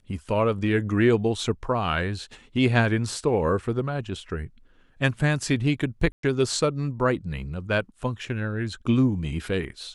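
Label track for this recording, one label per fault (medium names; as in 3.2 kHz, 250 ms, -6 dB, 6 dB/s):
6.120000	6.230000	dropout 113 ms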